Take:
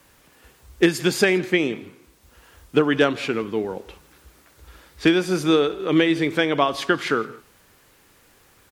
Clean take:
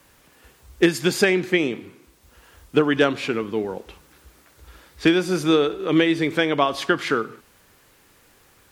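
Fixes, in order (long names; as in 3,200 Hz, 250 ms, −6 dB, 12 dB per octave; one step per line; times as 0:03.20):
echo removal 164 ms −22.5 dB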